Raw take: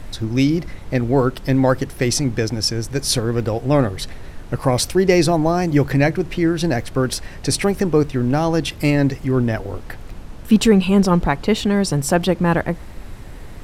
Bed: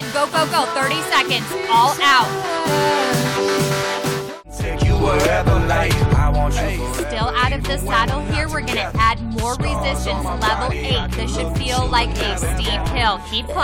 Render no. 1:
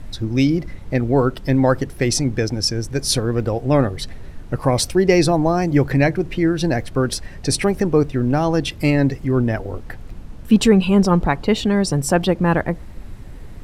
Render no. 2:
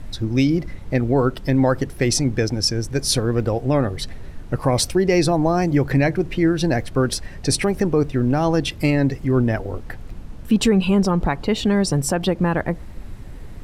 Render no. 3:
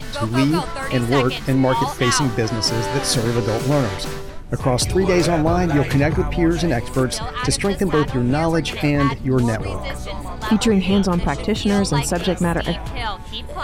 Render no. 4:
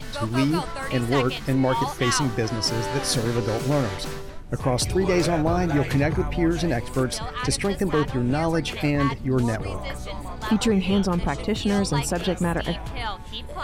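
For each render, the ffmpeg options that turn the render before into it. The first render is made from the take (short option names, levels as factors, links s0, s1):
-af "afftdn=nr=6:nf=-35"
-af "alimiter=limit=0.398:level=0:latency=1:release=111"
-filter_complex "[1:a]volume=0.376[s0];[0:a][s0]amix=inputs=2:normalize=0"
-af "volume=0.596"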